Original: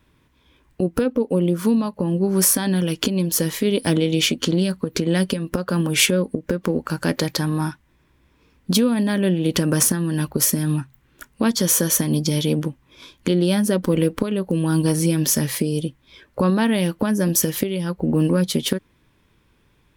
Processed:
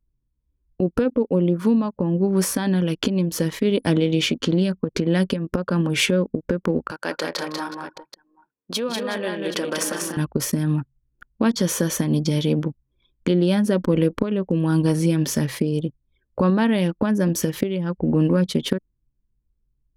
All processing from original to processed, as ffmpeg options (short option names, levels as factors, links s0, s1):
-filter_complex "[0:a]asettb=1/sr,asplit=3[s0][s1][s2];[s0]atrim=end=6.914[s3];[s1]atrim=start=6.91:end=10.17,asetpts=PTS-STARTPTS,afade=t=in:d=0.004:c=qsin,afade=t=out:st=3.256:d=0.004:c=qsin,highpass=500,aecho=1:1:156|191|227|364|378|775:0.158|0.631|0.211|0.178|0.168|0.251,atrim=end_sample=143766[s4];[s2]atrim=start=10.166[s5];[s3][s4]acrossfade=d=0.004:c1=hsin:c2=qsin[s6];[s6][s5]acrossfade=d=0.004:c1=qsin:c2=hsin,anlmdn=15.8,aemphasis=mode=reproduction:type=50kf"